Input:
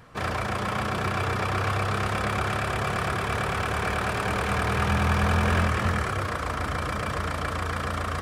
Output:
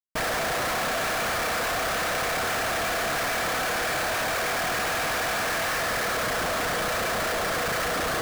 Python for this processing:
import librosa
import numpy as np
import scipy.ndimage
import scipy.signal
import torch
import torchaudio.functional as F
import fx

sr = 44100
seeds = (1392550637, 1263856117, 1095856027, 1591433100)

y = scipy.signal.sosfilt(scipy.signal.cheby1(6, 9, 470.0, 'highpass', fs=sr, output='sos'), x)
y = fx.schmitt(y, sr, flips_db=-42.5)
y = y * librosa.db_to_amplitude(7.0)